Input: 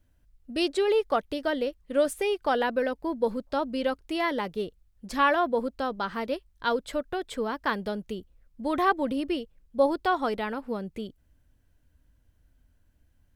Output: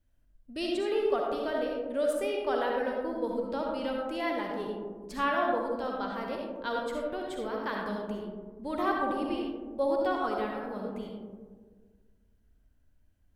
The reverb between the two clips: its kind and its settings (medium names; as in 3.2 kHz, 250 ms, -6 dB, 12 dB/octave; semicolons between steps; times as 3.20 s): algorithmic reverb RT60 1.6 s, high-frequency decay 0.25×, pre-delay 25 ms, DRR -1 dB; trim -8 dB